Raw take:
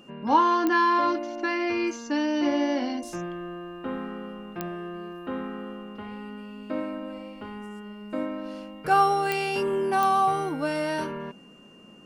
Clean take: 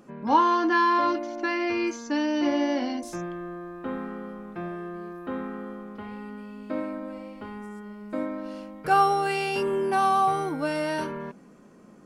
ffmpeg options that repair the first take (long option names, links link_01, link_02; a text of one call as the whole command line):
ffmpeg -i in.wav -af "adeclick=threshold=4,bandreject=frequency=2800:width=30" out.wav